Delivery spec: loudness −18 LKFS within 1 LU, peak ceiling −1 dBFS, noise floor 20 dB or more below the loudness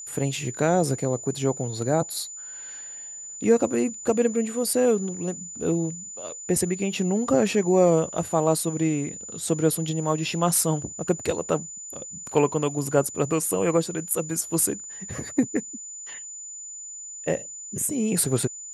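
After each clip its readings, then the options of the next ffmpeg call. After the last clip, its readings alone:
interfering tone 7,000 Hz; level of the tone −36 dBFS; integrated loudness −25.0 LKFS; sample peak −6.0 dBFS; target loudness −18.0 LKFS
→ -af "bandreject=frequency=7000:width=30"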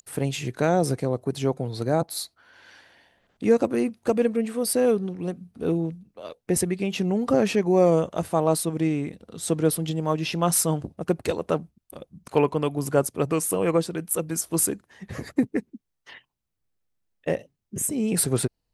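interfering tone none found; integrated loudness −25.0 LKFS; sample peak −6.5 dBFS; target loudness −18.0 LKFS
→ -af "volume=7dB,alimiter=limit=-1dB:level=0:latency=1"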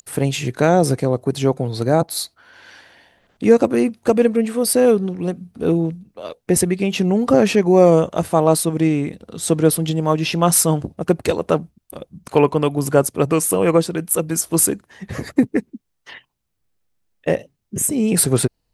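integrated loudness −18.0 LKFS; sample peak −1.0 dBFS; background noise floor −72 dBFS

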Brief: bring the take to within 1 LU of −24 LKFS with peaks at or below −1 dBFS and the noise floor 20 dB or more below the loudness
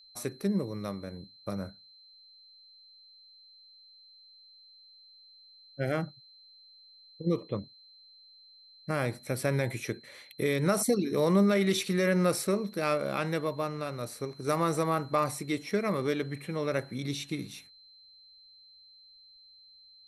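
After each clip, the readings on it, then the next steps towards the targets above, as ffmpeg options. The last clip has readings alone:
interfering tone 4,100 Hz; level of the tone −54 dBFS; integrated loudness −30.5 LKFS; sample peak −13.0 dBFS; target loudness −24.0 LKFS
→ -af "bandreject=frequency=4100:width=30"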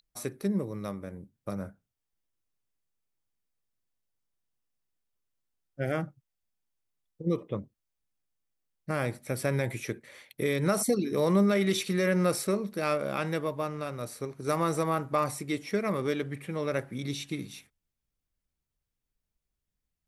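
interfering tone none found; integrated loudness −30.5 LKFS; sample peak −13.0 dBFS; target loudness −24.0 LKFS
→ -af "volume=6.5dB"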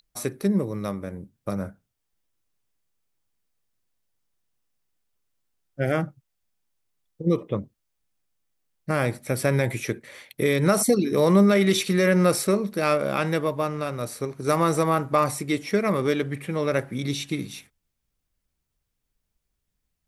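integrated loudness −24.0 LKFS; sample peak −6.5 dBFS; background noise floor −79 dBFS

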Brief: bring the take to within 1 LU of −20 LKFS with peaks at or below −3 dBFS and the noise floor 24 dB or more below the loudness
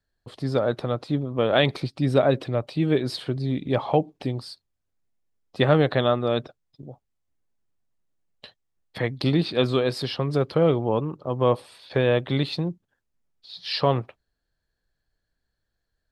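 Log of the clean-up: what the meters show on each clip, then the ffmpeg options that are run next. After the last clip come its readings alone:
integrated loudness −24.5 LKFS; sample peak −5.5 dBFS; target loudness −20.0 LKFS
→ -af "volume=4.5dB,alimiter=limit=-3dB:level=0:latency=1"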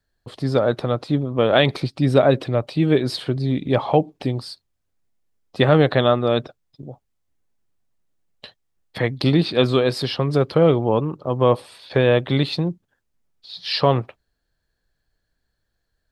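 integrated loudness −20.0 LKFS; sample peak −3.0 dBFS; background noise floor −75 dBFS

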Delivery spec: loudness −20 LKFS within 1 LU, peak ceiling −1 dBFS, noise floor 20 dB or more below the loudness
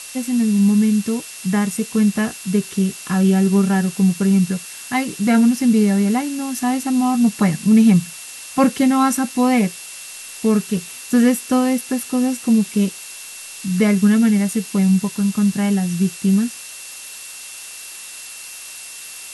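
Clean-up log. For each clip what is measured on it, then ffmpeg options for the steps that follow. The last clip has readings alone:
interfering tone 2,700 Hz; level of the tone −41 dBFS; background noise floor −35 dBFS; target noise floor −38 dBFS; integrated loudness −17.5 LKFS; sample peak −4.5 dBFS; target loudness −20.0 LKFS
→ -af "bandreject=frequency=2700:width=30"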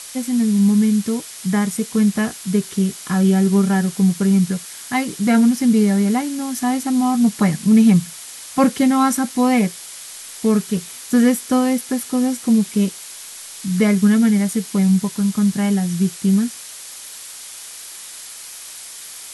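interfering tone none found; background noise floor −36 dBFS; target noise floor −38 dBFS
→ -af "afftdn=noise_reduction=6:noise_floor=-36"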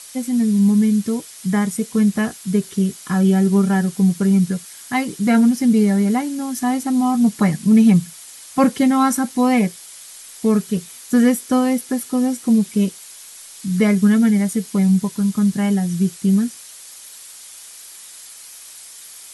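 background noise floor −40 dBFS; integrated loudness −18.0 LKFS; sample peak −4.5 dBFS; target loudness −20.0 LKFS
→ -af "volume=-2dB"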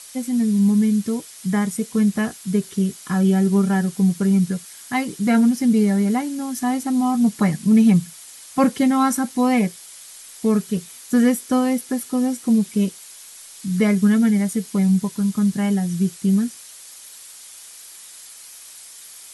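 integrated loudness −20.0 LKFS; sample peak −6.5 dBFS; background noise floor −42 dBFS

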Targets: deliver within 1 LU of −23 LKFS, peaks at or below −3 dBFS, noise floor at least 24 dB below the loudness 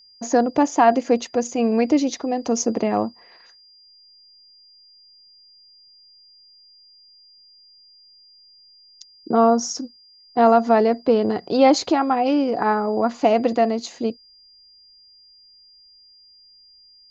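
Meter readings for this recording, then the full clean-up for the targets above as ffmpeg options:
interfering tone 4,800 Hz; level of the tone −49 dBFS; integrated loudness −20.0 LKFS; sample peak −4.0 dBFS; target loudness −23.0 LKFS
→ -af "bandreject=frequency=4800:width=30"
-af "volume=-3dB"

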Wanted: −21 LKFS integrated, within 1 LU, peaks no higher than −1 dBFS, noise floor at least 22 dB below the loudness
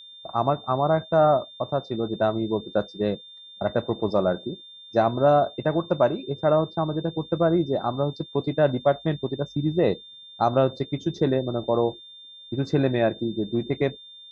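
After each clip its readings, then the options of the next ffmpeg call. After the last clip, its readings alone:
interfering tone 3,600 Hz; level of the tone −43 dBFS; integrated loudness −24.5 LKFS; sample peak −7.5 dBFS; target loudness −21.0 LKFS
→ -af "bandreject=frequency=3600:width=30"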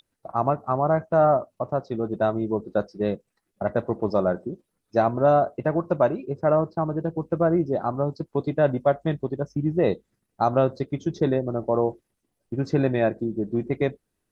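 interfering tone none found; integrated loudness −24.5 LKFS; sample peak −8.0 dBFS; target loudness −21.0 LKFS
→ -af "volume=3.5dB"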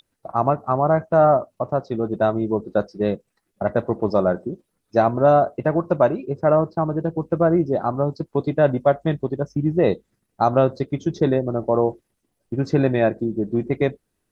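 integrated loudness −21.0 LKFS; sample peak −4.5 dBFS; background noise floor −75 dBFS

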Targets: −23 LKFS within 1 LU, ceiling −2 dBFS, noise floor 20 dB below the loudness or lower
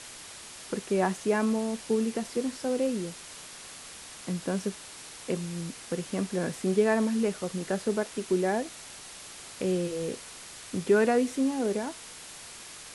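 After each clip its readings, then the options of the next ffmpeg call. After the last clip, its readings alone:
background noise floor −46 dBFS; target noise floor −50 dBFS; integrated loudness −29.5 LKFS; sample peak −12.5 dBFS; target loudness −23.0 LKFS
→ -af "afftdn=noise_reduction=6:noise_floor=-46"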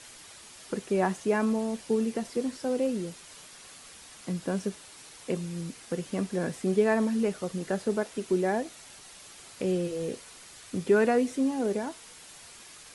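background noise floor −50 dBFS; integrated loudness −29.5 LKFS; sample peak −13.0 dBFS; target loudness −23.0 LKFS
→ -af "volume=6.5dB"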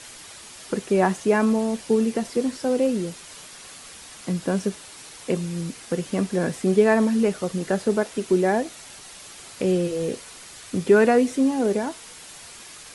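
integrated loudness −23.0 LKFS; sample peak −6.5 dBFS; background noise floor −43 dBFS

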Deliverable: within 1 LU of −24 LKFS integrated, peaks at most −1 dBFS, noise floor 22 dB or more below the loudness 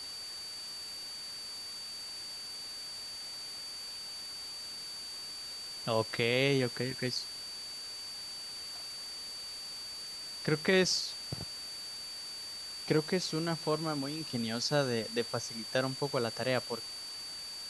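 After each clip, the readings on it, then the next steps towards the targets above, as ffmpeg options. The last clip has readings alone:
interfering tone 4,600 Hz; level of the tone −41 dBFS; background noise floor −43 dBFS; target noise floor −57 dBFS; integrated loudness −35.0 LKFS; sample peak −14.0 dBFS; target loudness −24.0 LKFS
→ -af "bandreject=frequency=4600:width=30"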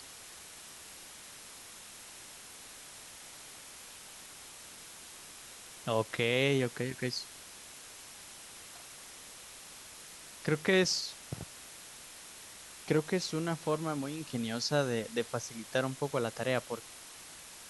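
interfering tone none found; background noise floor −51 dBFS; target noise floor −55 dBFS
→ -af "afftdn=noise_reduction=6:noise_floor=-51"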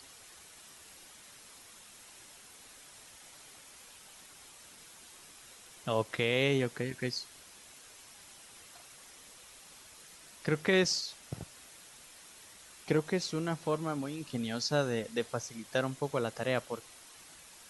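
background noise floor −55 dBFS; integrated loudness −33.0 LKFS; sample peak −14.5 dBFS; target loudness −24.0 LKFS
→ -af "volume=9dB"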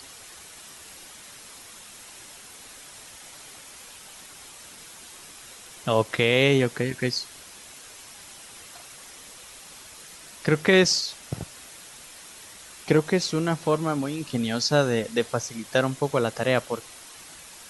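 integrated loudness −24.0 LKFS; sample peak −5.5 dBFS; background noise floor −46 dBFS

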